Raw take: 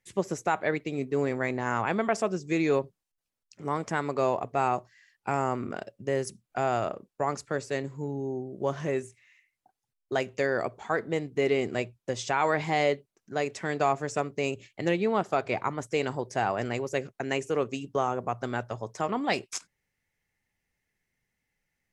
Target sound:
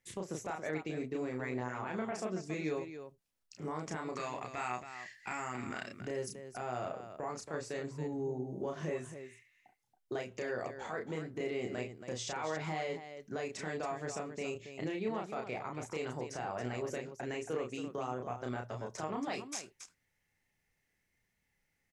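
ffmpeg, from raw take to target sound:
-filter_complex "[0:a]acompressor=threshold=-35dB:ratio=3,alimiter=level_in=3.5dB:limit=-24dB:level=0:latency=1:release=29,volume=-3.5dB,asettb=1/sr,asplit=3[a][b][c];[a]atrim=end=4.164[d];[b]atrim=start=4.16:end=6.01,asetpts=PTS-STARTPTS,afade=t=in:d=0.004:c=qsin,afade=t=out:st=1.846:d=0.004:c=qsin,equalizer=f=125:t=o:w=1:g=-3,equalizer=f=500:t=o:w=1:g=-7,equalizer=f=2k:t=o:w=1:g=11,equalizer=f=4k:t=o:w=1:g=5,equalizer=f=8k:t=o:w=1:g=10[e];[c]atrim=start=6.006[f];[d][e]acrossfade=d=0.004:c1=hsin:c2=qsin[g];[g][f]acrossfade=d=0.004:c1=qsin:c2=hsin,aecho=1:1:32.07|277:0.708|0.355,volume=-1.5dB"

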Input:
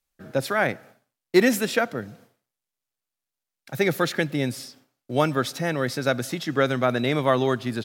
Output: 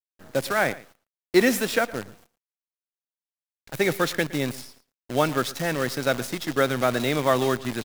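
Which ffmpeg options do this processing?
-af "lowshelf=f=140:g=-6.5,acrusher=bits=6:dc=4:mix=0:aa=0.000001,aecho=1:1:114:0.112"

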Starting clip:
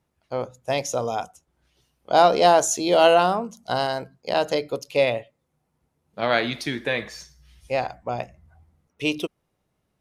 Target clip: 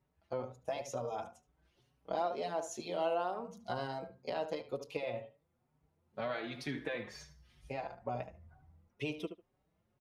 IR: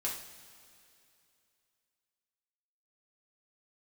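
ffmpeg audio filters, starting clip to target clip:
-filter_complex "[0:a]highshelf=f=3.8k:g=-10.5,acompressor=threshold=-32dB:ratio=4,asplit=2[a][b];[b]adelay=74,lowpass=f=2.3k:p=1,volume=-9.5dB,asplit=2[c][d];[d]adelay=74,lowpass=f=2.3k:p=1,volume=0.17[e];[c][e]amix=inputs=2:normalize=0[f];[a][f]amix=inputs=2:normalize=0,asplit=2[g][h];[h]adelay=5,afreqshift=2.1[i];[g][i]amix=inputs=2:normalize=1,volume=-1.5dB"

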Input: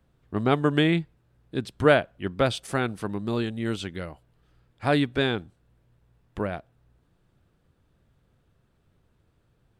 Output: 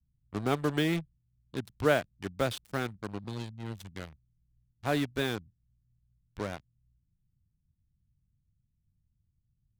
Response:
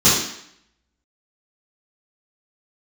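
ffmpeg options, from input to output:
-filter_complex "[0:a]asettb=1/sr,asplit=3[a][b][c];[a]atrim=end=3.244[d];[b]atrim=start=3.24:end=3.95,asetpts=PTS-STARTPTS,afade=t=in:d=0.004:c=qsin,afade=t=out:st=0.706:d=0.004:c=qsin,acrossover=split=250|3000[e][f][g];[f]acompressor=threshold=-41dB:ratio=4[h];[e][h][g]amix=inputs=3:normalize=0[i];[c]atrim=start=3.946[j];[d][i]acrossfade=d=0.004:c1=hsin:c2=qsin[k];[k][j]acrossfade=d=0.004:c1=qsin:c2=hsin,acrossover=split=190[l][m];[m]acrusher=bits=4:mix=0:aa=0.5[n];[l][n]amix=inputs=2:normalize=0,volume=-7dB"

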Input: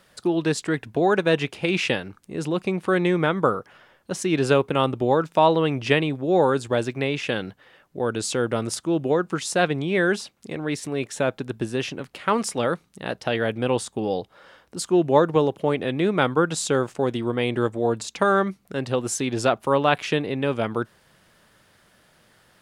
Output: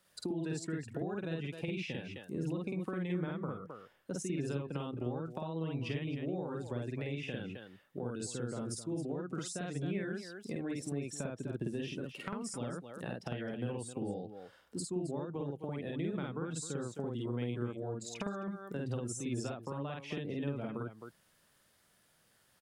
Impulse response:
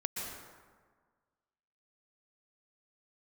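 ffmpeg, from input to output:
-filter_complex "[0:a]afftdn=nr=14:nf=-32,highshelf=f=5.9k:g=11.5,acompressor=threshold=-33dB:ratio=2.5,asplit=2[a][b];[b]aecho=0:1:49.56|262.4:1|0.251[c];[a][c]amix=inputs=2:normalize=0,acrossover=split=270[d][e];[e]acompressor=threshold=-37dB:ratio=10[f];[d][f]amix=inputs=2:normalize=0,volume=-3.5dB"

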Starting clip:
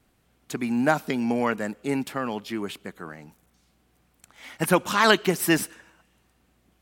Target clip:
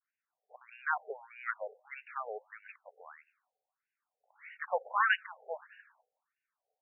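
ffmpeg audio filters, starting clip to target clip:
-af "agate=range=-33dB:threshold=-57dB:ratio=3:detection=peak,afftfilt=real='re*between(b*sr/1024,570*pow(2100/570,0.5+0.5*sin(2*PI*1.6*pts/sr))/1.41,570*pow(2100/570,0.5+0.5*sin(2*PI*1.6*pts/sr))*1.41)':imag='im*between(b*sr/1024,570*pow(2100/570,0.5+0.5*sin(2*PI*1.6*pts/sr))/1.41,570*pow(2100/570,0.5+0.5*sin(2*PI*1.6*pts/sr))*1.41)':win_size=1024:overlap=0.75,volume=-5dB"

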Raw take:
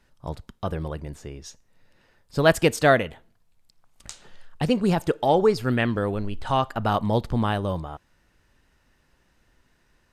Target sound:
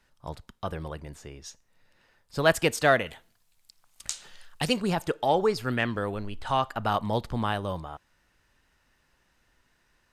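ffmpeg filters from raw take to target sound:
-filter_complex "[0:a]asettb=1/sr,asplit=3[a][b][c];[a]atrim=end=3.064[d];[b]atrim=start=3.06:end=4.82,asetpts=PTS-STARTPTS,afade=t=in:d=0.004:c=qsin,afade=t=out:st=1.756:d=0.004:c=qsin,highshelf=f=2.5k:g=10.5[e];[c]atrim=start=4.816[f];[d][e]acrossfade=d=0.004:c1=hsin:c2=qsin[g];[g][f]acrossfade=d=0.004:c1=qsin:c2=hsin,acrossover=split=670[h][i];[i]acontrast=34[j];[h][j]amix=inputs=2:normalize=0,volume=-6.5dB"

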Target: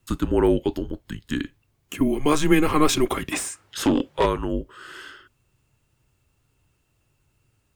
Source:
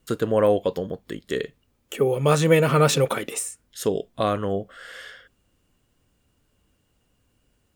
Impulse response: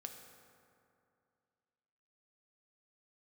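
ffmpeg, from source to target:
-filter_complex "[0:a]afreqshift=-150,asplit=3[a][b][c];[a]afade=t=out:st=3.31:d=0.02[d];[b]asplit=2[e][f];[f]highpass=f=720:p=1,volume=24dB,asoftclip=type=tanh:threshold=-9.5dB[g];[e][g]amix=inputs=2:normalize=0,lowpass=f=1.8k:p=1,volume=-6dB,afade=t=in:st=3.31:d=0.02,afade=t=out:st=4.25:d=0.02[h];[c]afade=t=in:st=4.25:d=0.02[i];[d][h][i]amix=inputs=3:normalize=0"

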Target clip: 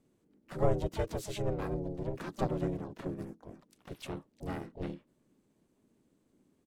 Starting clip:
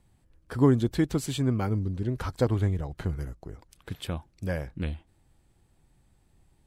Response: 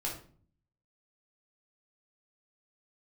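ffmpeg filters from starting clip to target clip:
-filter_complex "[0:a]aeval=exprs='val(0)*sin(2*PI*270*n/s)':c=same,asplit=3[a][b][c];[b]asetrate=35002,aresample=44100,atempo=1.25992,volume=-3dB[d];[c]asetrate=66075,aresample=44100,atempo=0.66742,volume=-9dB[e];[a][d][e]amix=inputs=3:normalize=0,volume=-7dB"

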